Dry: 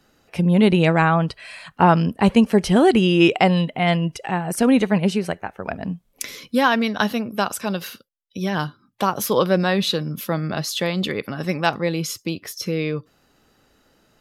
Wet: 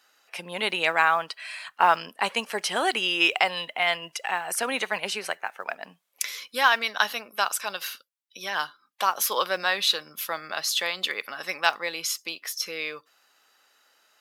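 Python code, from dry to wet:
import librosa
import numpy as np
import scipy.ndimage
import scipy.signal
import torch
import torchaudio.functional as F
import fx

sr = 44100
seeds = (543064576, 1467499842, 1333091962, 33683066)

y = scipy.signal.sosfilt(scipy.signal.butter(2, 1000.0, 'highpass', fs=sr, output='sos'), x)
y = fx.mod_noise(y, sr, seeds[0], snr_db=35)
y = fx.band_squash(y, sr, depth_pct=40, at=(3.32, 5.64))
y = F.gain(torch.from_numpy(y), 1.0).numpy()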